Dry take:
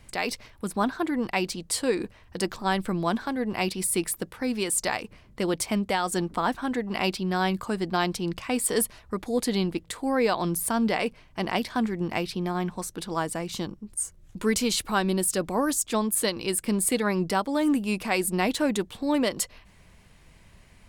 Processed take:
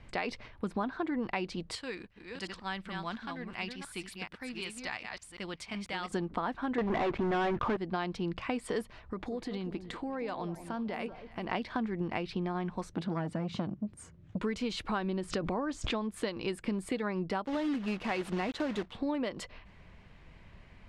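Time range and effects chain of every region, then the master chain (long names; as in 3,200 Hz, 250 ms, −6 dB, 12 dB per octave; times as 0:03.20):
0:01.75–0:06.12: delay that plays each chunk backwards 362 ms, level −5 dB + guitar amp tone stack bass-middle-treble 5-5-5 + leveller curve on the samples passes 1
0:06.78–0:07.77: low-pass filter 2,000 Hz 24 dB per octave + parametric band 190 Hz −11 dB 0.21 octaves + leveller curve on the samples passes 5
0:08.99–0:11.50: downward compressor, threshold −33 dBFS + delay that swaps between a low-pass and a high-pass 190 ms, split 850 Hz, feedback 51%, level −10 dB
0:12.93–0:14.41: high-pass filter 160 Hz + bass and treble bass +14 dB, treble −3 dB + saturating transformer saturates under 590 Hz
0:14.98–0:16.14: high-frequency loss of the air 60 metres + background raised ahead of every attack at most 33 dB per second
0:17.46–0:18.93: one scale factor per block 3 bits + notch filter 2,400 Hz, Q 25
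whole clip: low-pass filter 3,100 Hz 12 dB per octave; downward compressor, threshold −30 dBFS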